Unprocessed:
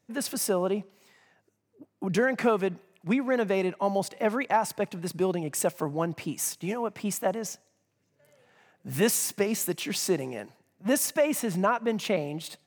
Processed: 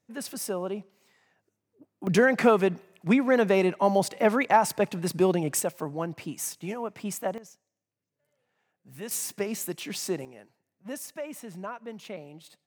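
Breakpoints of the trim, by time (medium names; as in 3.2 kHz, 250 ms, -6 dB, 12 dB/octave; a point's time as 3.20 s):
-5 dB
from 2.07 s +4 dB
from 5.60 s -3 dB
from 7.38 s -15 dB
from 9.11 s -4 dB
from 10.25 s -12.5 dB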